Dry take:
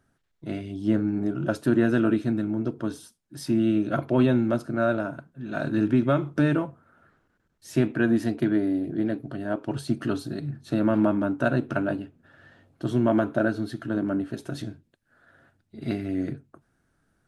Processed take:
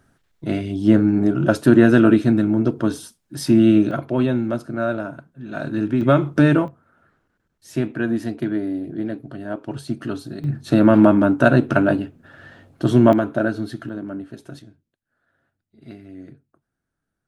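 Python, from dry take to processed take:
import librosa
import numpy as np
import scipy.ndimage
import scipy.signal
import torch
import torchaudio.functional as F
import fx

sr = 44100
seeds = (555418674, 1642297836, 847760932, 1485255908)

y = fx.gain(x, sr, db=fx.steps((0.0, 9.0), (3.91, 1.0), (6.01, 7.5), (6.68, 0.0), (10.44, 9.5), (13.13, 3.0), (13.89, -4.0), (14.59, -11.0)))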